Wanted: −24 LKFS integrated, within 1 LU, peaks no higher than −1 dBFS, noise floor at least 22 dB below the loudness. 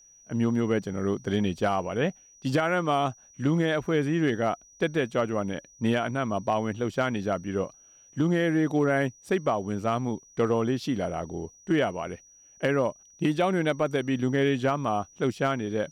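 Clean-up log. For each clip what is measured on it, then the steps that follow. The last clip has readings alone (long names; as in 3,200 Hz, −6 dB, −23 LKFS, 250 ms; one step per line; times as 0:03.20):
share of clipped samples 0.3%; peaks flattened at −16.0 dBFS; interfering tone 5,800 Hz; level of the tone −53 dBFS; integrated loudness −27.5 LKFS; sample peak −16.0 dBFS; target loudness −24.0 LKFS
→ clipped peaks rebuilt −16 dBFS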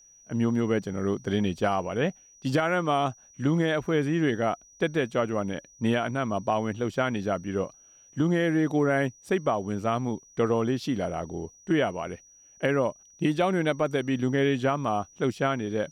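share of clipped samples 0.0%; interfering tone 5,800 Hz; level of the tone −53 dBFS
→ notch filter 5,800 Hz, Q 30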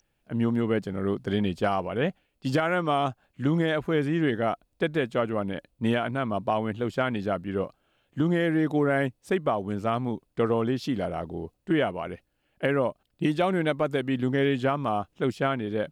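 interfering tone none found; integrated loudness −27.5 LKFS; sample peak −12.0 dBFS; target loudness −24.0 LKFS
→ level +3.5 dB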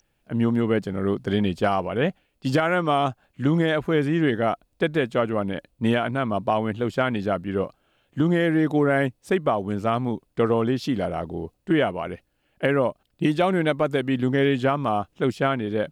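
integrated loudness −24.0 LKFS; sample peak −8.5 dBFS; background noise floor −71 dBFS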